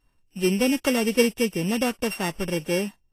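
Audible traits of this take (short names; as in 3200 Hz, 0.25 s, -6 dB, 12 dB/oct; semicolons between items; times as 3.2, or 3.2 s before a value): a buzz of ramps at a fixed pitch in blocks of 16 samples; Vorbis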